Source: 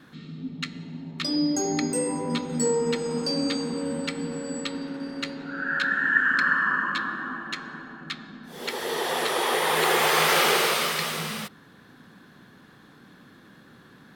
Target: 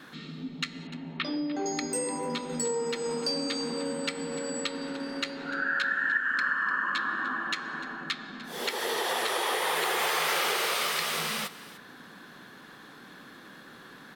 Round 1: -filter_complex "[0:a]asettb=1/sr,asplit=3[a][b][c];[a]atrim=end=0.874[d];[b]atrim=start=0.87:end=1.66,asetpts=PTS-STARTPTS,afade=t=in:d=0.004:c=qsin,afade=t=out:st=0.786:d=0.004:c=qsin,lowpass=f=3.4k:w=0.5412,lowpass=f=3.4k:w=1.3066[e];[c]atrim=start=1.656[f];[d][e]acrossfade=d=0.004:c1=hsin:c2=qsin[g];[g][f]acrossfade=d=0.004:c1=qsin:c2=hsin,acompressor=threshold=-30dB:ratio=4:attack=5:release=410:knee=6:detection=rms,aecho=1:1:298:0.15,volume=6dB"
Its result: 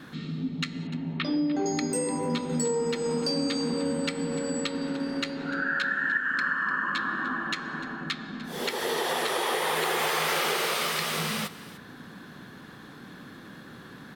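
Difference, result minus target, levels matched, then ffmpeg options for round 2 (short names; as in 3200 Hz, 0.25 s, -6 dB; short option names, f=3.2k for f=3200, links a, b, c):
125 Hz band +8.0 dB
-filter_complex "[0:a]asettb=1/sr,asplit=3[a][b][c];[a]atrim=end=0.874[d];[b]atrim=start=0.87:end=1.66,asetpts=PTS-STARTPTS,afade=t=in:d=0.004:c=qsin,afade=t=out:st=0.786:d=0.004:c=qsin,lowpass=f=3.4k:w=0.5412,lowpass=f=3.4k:w=1.3066[e];[c]atrim=start=1.656[f];[d][e]acrossfade=d=0.004:c1=hsin:c2=qsin[g];[g][f]acrossfade=d=0.004:c1=qsin:c2=hsin,acompressor=threshold=-30dB:ratio=4:attack=5:release=410:knee=6:detection=rms,equalizer=f=60:w=0.3:g=-14.5,aecho=1:1:298:0.15,volume=6dB"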